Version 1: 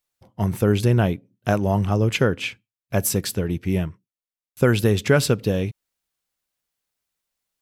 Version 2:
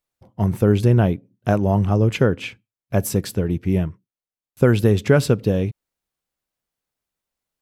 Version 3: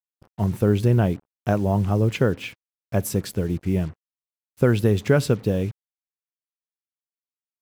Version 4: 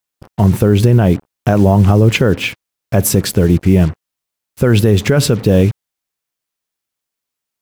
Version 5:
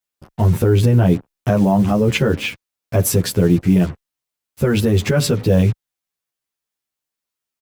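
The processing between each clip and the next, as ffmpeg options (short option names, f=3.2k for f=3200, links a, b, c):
-af "tiltshelf=f=1.3k:g=4,volume=-1dB"
-af "acrusher=bits=6:mix=0:aa=0.5,volume=-3dB"
-af "alimiter=level_in=16dB:limit=-1dB:release=50:level=0:latency=1,volume=-1dB"
-filter_complex "[0:a]asplit=2[a][b];[b]adelay=10.7,afreqshift=0.43[c];[a][c]amix=inputs=2:normalize=1,volume=-1dB"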